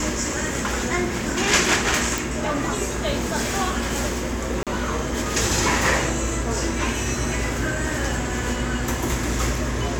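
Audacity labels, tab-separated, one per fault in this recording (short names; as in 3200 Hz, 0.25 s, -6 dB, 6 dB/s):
2.180000	2.180000	pop
4.630000	4.670000	gap 37 ms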